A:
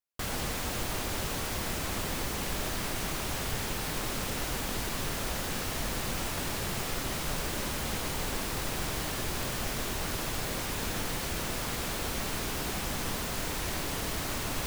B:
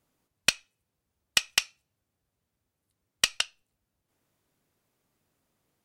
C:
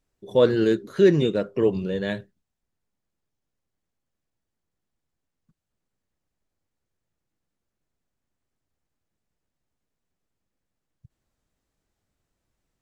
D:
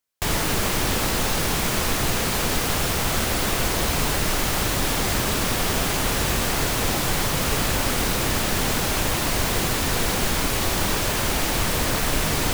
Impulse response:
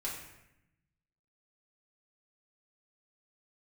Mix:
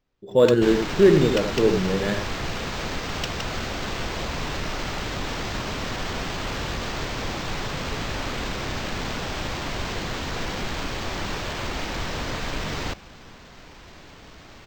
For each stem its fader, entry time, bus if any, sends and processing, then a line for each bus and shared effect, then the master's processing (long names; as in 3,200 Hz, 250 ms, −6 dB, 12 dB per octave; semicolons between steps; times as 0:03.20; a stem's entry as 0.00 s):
−11.5 dB, 0.20 s, no send, no echo send, no processing
−7.0 dB, 0.00 s, no send, no echo send, no processing
+1.0 dB, 0.00 s, no send, echo send −6 dB, no processing
−6.0 dB, 0.40 s, no send, no echo send, no processing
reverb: not used
echo: single-tap delay 85 ms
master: linearly interpolated sample-rate reduction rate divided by 4×